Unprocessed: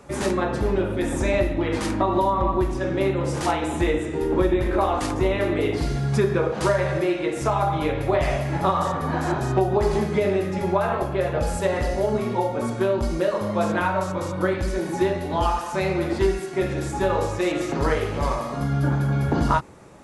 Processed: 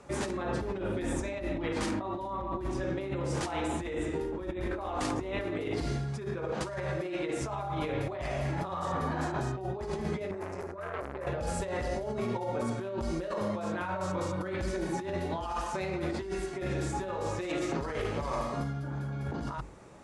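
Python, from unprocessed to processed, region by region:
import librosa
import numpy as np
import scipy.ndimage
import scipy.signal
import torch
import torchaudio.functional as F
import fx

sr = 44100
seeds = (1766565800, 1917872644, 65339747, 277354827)

y = fx.chain(x, sr, fx.over_compress(threshold_db=-25.0, ratio=-0.5),
    fx.fixed_phaser(hz=830.0, stages=6),
    fx.transformer_sat(knee_hz=1200.0), at=(10.31, 11.27))
y = scipy.signal.sosfilt(scipy.signal.butter(4, 10000.0, 'lowpass', fs=sr, output='sos'), y)
y = fx.hum_notches(y, sr, base_hz=50, count=6)
y = fx.over_compress(y, sr, threshold_db=-26.0, ratio=-1.0)
y = y * 10.0 ** (-7.5 / 20.0)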